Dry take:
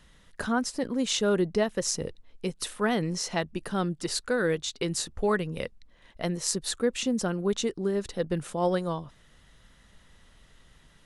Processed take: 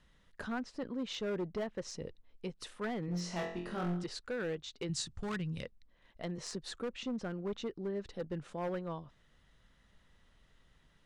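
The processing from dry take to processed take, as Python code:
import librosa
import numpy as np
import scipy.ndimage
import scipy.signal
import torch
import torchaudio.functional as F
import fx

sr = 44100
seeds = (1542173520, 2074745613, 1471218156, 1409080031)

y = fx.high_shelf(x, sr, hz=7900.0, db=-12.0)
y = fx.env_lowpass_down(y, sr, base_hz=2800.0, full_db=-22.5)
y = 10.0 ** (-17.0 / 20.0) * np.tanh(y / 10.0 ** (-17.0 / 20.0))
y = fx.room_flutter(y, sr, wall_m=3.9, rt60_s=0.54, at=(3.06, 4.04))
y = np.clip(y, -10.0 ** (-23.0 / 20.0), 10.0 ** (-23.0 / 20.0))
y = fx.graphic_eq(y, sr, hz=(125, 500, 4000, 8000), db=(11, -9, 5, 11), at=(4.89, 5.63))
y = fx.band_squash(y, sr, depth_pct=40, at=(6.38, 6.93))
y = y * librosa.db_to_amplitude(-9.0)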